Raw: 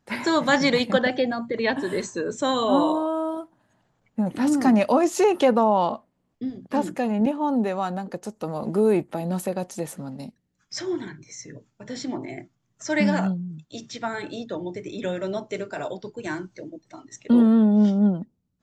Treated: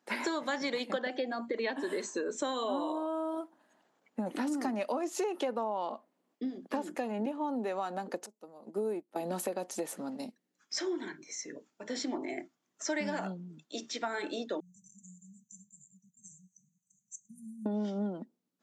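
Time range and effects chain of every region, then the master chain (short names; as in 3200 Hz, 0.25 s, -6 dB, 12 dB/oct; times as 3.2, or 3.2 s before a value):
8.26–9.16 EQ curve 180 Hz 0 dB, 2800 Hz -7 dB, 7100 Hz -2 dB + upward expander 2.5:1, over -31 dBFS
14.6–17.66 brick-wall FIR band-stop 200–5900 Hz + low shelf 410 Hz -6.5 dB
whole clip: HPF 250 Hz 24 dB/oct; compressor 6:1, threshold -30 dBFS; gain -1 dB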